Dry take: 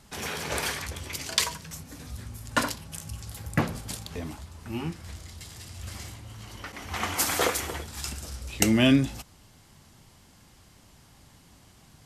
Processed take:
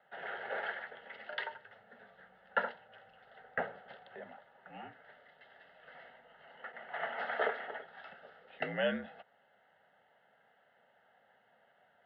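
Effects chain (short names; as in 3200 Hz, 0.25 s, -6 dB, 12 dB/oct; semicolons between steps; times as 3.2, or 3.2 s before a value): mistuned SSB -53 Hz 360–2600 Hz; fixed phaser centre 1600 Hz, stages 8; gain -2.5 dB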